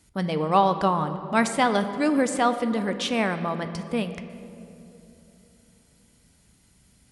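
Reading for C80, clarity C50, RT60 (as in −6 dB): 11.0 dB, 10.5 dB, 3.0 s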